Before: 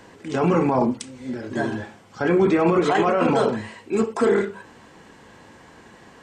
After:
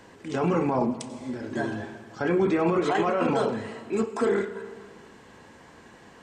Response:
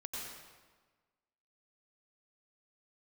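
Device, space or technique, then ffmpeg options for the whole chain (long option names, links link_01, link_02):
ducked reverb: -filter_complex "[0:a]asplit=3[link_01][link_02][link_03];[1:a]atrim=start_sample=2205[link_04];[link_02][link_04]afir=irnorm=-1:irlink=0[link_05];[link_03]apad=whole_len=274521[link_06];[link_05][link_06]sidechaincompress=threshold=-25dB:ratio=8:attack=43:release=706,volume=-4dB[link_07];[link_01][link_07]amix=inputs=2:normalize=0,volume=-6dB"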